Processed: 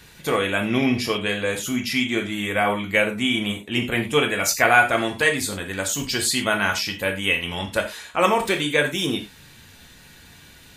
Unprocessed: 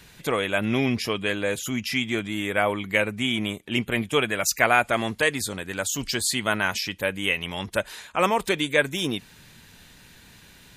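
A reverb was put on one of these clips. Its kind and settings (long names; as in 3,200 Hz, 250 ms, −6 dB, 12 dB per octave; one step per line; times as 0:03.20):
reverb whose tail is shaped and stops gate 130 ms falling, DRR 2.5 dB
level +1 dB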